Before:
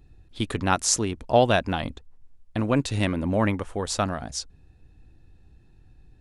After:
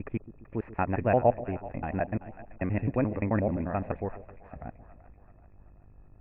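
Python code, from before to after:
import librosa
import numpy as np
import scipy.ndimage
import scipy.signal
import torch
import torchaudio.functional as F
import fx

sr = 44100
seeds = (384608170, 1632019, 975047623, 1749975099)

y = fx.block_reorder(x, sr, ms=87.0, group=6)
y = scipy.signal.sosfilt(scipy.signal.cheby1(6, 6, 2600.0, 'lowpass', fs=sr, output='sos'), y)
y = fx.low_shelf(y, sr, hz=380.0, db=8.0)
y = fx.echo_split(y, sr, split_hz=660.0, low_ms=134, high_ms=383, feedback_pct=52, wet_db=-15.0)
y = fx.dmg_buzz(y, sr, base_hz=50.0, harmonics=28, level_db=-53.0, tilt_db=-7, odd_only=False)
y = y * 10.0 ** (-5.0 / 20.0)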